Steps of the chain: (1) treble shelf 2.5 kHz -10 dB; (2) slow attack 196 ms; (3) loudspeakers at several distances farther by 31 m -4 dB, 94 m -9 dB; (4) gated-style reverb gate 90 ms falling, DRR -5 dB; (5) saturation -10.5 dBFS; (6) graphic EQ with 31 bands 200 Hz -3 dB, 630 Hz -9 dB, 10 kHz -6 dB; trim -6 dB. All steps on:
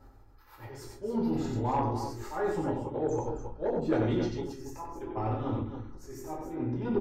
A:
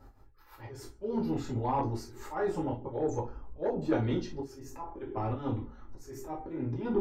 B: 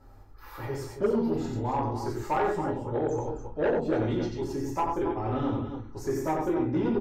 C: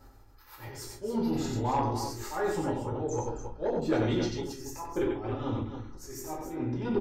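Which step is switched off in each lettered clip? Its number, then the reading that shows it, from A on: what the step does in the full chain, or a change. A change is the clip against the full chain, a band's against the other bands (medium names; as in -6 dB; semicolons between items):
3, momentary loudness spread change +2 LU; 2, crest factor change -2.5 dB; 1, 8 kHz band +8.0 dB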